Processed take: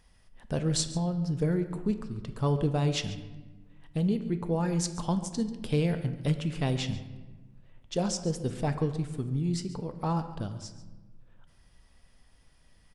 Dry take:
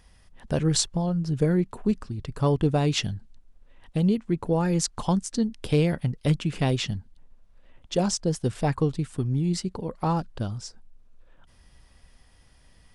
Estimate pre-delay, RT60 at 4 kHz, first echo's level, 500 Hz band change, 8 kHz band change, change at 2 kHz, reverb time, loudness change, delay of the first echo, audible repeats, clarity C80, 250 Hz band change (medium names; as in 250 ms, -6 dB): 5 ms, 0.80 s, -16.0 dB, -5.0 dB, -5.0 dB, -5.0 dB, 1.3 s, -4.5 dB, 140 ms, 1, 11.5 dB, -4.5 dB